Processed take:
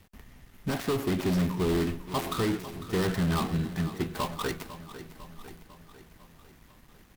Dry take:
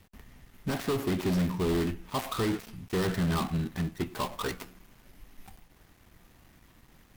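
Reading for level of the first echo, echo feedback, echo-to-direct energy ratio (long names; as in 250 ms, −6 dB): −14.0 dB, 58%, −12.0 dB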